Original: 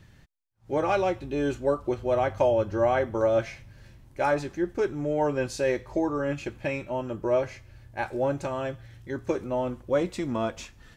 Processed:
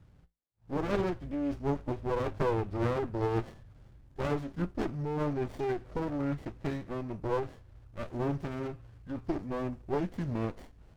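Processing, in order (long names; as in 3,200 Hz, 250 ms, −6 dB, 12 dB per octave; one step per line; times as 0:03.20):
tuned comb filter 56 Hz, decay 0.23 s, harmonics odd, mix 50%
formants moved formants −4 semitones
windowed peak hold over 33 samples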